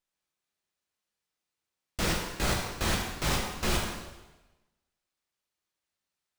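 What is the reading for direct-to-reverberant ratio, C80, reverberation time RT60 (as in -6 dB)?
-1.0 dB, 4.5 dB, 1.1 s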